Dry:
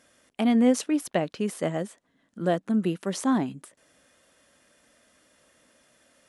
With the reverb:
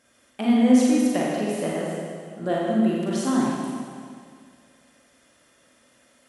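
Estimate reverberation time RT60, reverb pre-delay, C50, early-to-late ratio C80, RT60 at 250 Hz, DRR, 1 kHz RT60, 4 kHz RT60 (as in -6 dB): 2.1 s, 36 ms, -2.0 dB, -0.5 dB, 2.1 s, -5.0 dB, 2.1 s, 2.0 s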